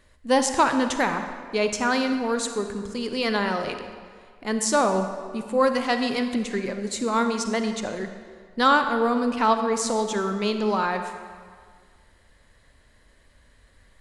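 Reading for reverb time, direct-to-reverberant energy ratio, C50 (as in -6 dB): 1.8 s, 7.0 dB, 7.5 dB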